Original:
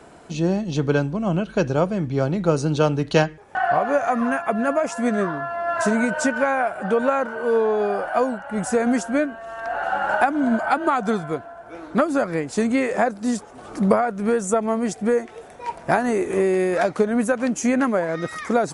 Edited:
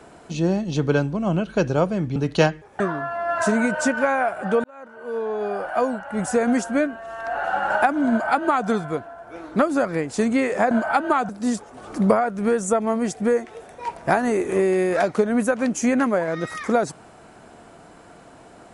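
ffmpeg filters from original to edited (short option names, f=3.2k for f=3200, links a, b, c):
-filter_complex "[0:a]asplit=6[a][b][c][d][e][f];[a]atrim=end=2.162[g];[b]atrim=start=2.918:end=3.562[h];[c]atrim=start=5.188:end=7.03,asetpts=PTS-STARTPTS,afade=t=out:st=1.838:d=0.004:c=hsin[i];[d]atrim=start=7.03:end=13.102,asetpts=PTS-STARTPTS,afade=t=in:d=1.34[j];[e]atrim=start=10.478:end=11.062[k];[f]atrim=start=13.098[l];[g][h]acrossfade=d=0.004:c1=hsin:c2=hsin[m];[i][j]concat=n=2:v=0:a=1[n];[m][n]acrossfade=d=0.004:c1=hsin:c2=hsin[o];[o][k]acrossfade=d=0.004:c1=hsin:c2=hsin[p];[p][l]acrossfade=d=0.004:c1=hsin:c2=hsin"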